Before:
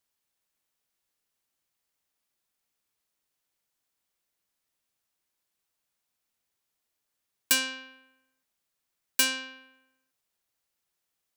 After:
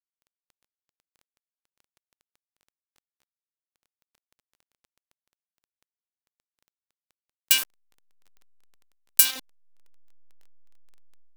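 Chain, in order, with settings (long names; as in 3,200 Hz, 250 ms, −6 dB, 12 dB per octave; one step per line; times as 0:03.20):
hold until the input has moved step −24.5 dBFS
spectral tilt +3.5 dB per octave
automatic gain control gain up to 8.5 dB
parametric band 2,800 Hz +9 dB 0.81 octaves, from 0:07.58 13,000 Hz, from 0:09.25 3,800 Hz
surface crackle 11 per second −41 dBFS
level −3.5 dB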